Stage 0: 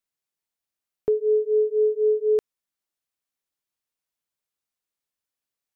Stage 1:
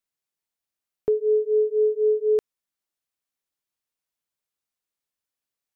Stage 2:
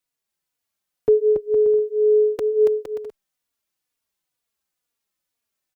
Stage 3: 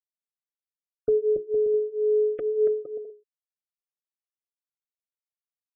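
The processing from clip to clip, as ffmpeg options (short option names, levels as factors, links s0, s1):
-af anull
-filter_complex "[0:a]aecho=1:1:280|462|580.3|657.2|707.2:0.631|0.398|0.251|0.158|0.1,asplit=2[s0][s1];[s1]adelay=3.5,afreqshift=-2.1[s2];[s0][s2]amix=inputs=2:normalize=1,volume=2.24"
-af "bandreject=f=60:t=h:w=6,bandreject=f=120:t=h:w=6,bandreject=f=180:t=h:w=6,bandreject=f=240:t=h:w=6,bandreject=f=300:t=h:w=6,bandreject=f=360:t=h:w=6,bandreject=f=420:t=h:w=6,afftfilt=real='re*gte(hypot(re,im),0.0158)':imag='im*gte(hypot(re,im),0.0158)':win_size=1024:overlap=0.75,asuperstop=centerf=920:order=12:qfactor=1.9,volume=0.596"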